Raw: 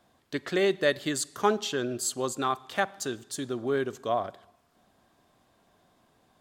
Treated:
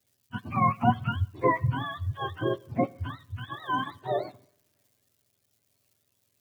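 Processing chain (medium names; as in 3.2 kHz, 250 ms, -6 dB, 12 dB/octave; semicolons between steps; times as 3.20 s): spectrum inverted on a logarithmic axis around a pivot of 650 Hz; crackle 450 per s -57 dBFS; treble shelf 7.5 kHz +11.5 dB; three bands expanded up and down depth 40%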